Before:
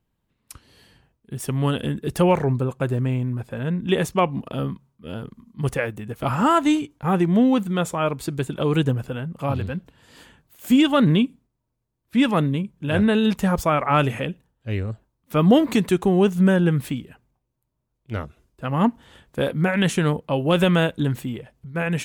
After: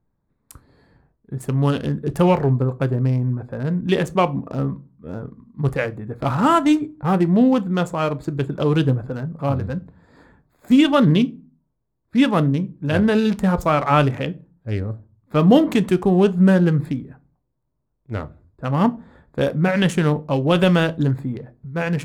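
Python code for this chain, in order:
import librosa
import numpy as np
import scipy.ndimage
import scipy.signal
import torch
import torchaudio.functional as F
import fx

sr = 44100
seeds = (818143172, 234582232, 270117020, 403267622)

y = fx.wiener(x, sr, points=15)
y = fx.room_shoebox(y, sr, seeds[0], volume_m3=130.0, walls='furnished', distance_m=0.33)
y = y * librosa.db_to_amplitude(2.0)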